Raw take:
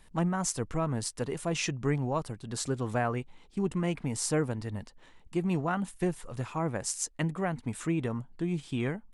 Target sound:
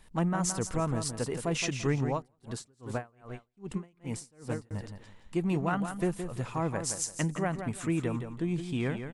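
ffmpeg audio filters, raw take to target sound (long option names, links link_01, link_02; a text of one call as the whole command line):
ffmpeg -i in.wav -filter_complex "[0:a]aecho=1:1:169|338|507:0.376|0.094|0.0235,asettb=1/sr,asplit=3[link_01][link_02][link_03];[link_01]atrim=end=2.134[link_04];[link_02]atrim=start=2.13:end=4.71,asetpts=PTS-STARTPTS,afade=type=in:duration=0.004:curve=qsin,afade=type=out:start_time=2.576:duration=0.004:curve=qsin,aeval=exprs='val(0)*pow(10,-36*(0.5-0.5*cos(2*PI*2.5*n/s))/20)':channel_layout=same[link_05];[link_03]atrim=start=4.706[link_06];[link_04][link_05]acrossfade=duration=0.004:curve1=hsin:curve2=qsin[link_07];[link_07][link_06]acrossfade=duration=0.004:curve1=qsin:curve2=hsin" out.wav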